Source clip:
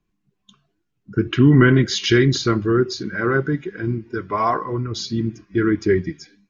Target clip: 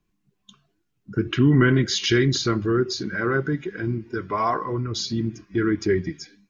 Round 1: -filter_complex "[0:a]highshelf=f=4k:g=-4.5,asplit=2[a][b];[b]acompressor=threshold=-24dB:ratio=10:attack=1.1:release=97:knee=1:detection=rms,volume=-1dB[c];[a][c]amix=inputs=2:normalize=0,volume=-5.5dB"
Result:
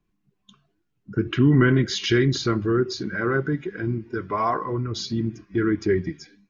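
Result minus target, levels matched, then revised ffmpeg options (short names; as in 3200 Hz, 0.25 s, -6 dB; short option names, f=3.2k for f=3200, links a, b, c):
8000 Hz band -4.5 dB
-filter_complex "[0:a]highshelf=f=4k:g=3.5,asplit=2[a][b];[b]acompressor=threshold=-24dB:ratio=10:attack=1.1:release=97:knee=1:detection=rms,volume=-1dB[c];[a][c]amix=inputs=2:normalize=0,volume=-5.5dB"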